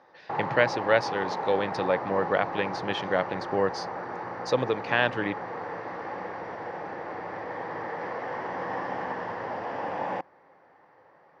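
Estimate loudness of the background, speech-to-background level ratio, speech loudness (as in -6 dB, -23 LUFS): -34.0 LUFS, 6.0 dB, -28.0 LUFS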